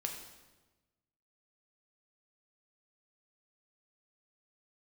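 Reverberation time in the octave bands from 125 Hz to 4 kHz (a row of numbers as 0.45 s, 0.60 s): 1.6 s, 1.4 s, 1.2 s, 1.1 s, 1.0 s, 0.95 s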